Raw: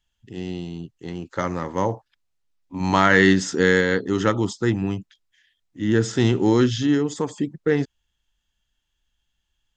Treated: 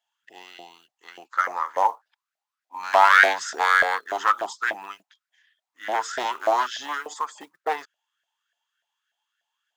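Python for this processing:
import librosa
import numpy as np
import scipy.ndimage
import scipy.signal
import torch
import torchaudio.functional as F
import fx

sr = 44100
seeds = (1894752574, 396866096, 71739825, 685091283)

y = np.minimum(x, 2.0 * 10.0 ** (-15.5 / 20.0) - x)
y = fx.low_shelf(y, sr, hz=170.0, db=-10.0)
y = fx.quant_float(y, sr, bits=4)
y = fx.filter_lfo_highpass(y, sr, shape='saw_up', hz=3.4, low_hz=640.0, high_hz=1700.0, q=7.3)
y = y * librosa.db_to_amplitude(-4.0)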